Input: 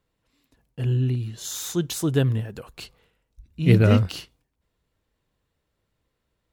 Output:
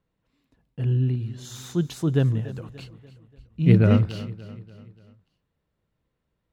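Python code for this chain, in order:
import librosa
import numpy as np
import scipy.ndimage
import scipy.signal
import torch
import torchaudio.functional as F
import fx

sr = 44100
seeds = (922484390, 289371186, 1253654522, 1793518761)

y = fx.lowpass(x, sr, hz=2700.0, slope=6)
y = fx.peak_eq(y, sr, hz=170.0, db=5.5, octaves=0.91)
y = fx.echo_feedback(y, sr, ms=291, feedback_pct=48, wet_db=-17)
y = F.gain(torch.from_numpy(y), -2.5).numpy()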